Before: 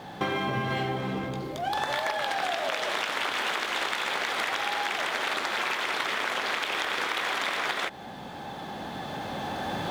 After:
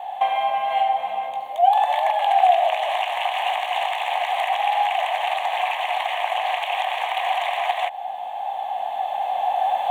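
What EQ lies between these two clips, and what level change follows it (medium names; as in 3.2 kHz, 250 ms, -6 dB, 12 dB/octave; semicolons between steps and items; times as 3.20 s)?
resonant high-pass 730 Hz, resonance Q 8.4; peaking EQ 2.9 kHz +6 dB 0.4 oct; static phaser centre 1.4 kHz, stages 6; 0.0 dB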